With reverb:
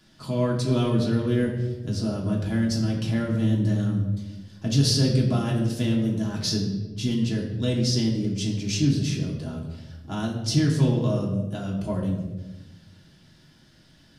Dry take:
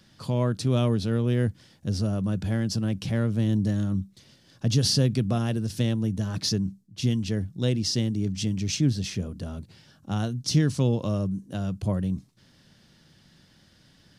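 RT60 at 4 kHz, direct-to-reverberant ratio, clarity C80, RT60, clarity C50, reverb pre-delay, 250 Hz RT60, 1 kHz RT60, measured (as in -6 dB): 0.80 s, -3.5 dB, 7.5 dB, 1.1 s, 5.0 dB, 3 ms, 1.5 s, 0.95 s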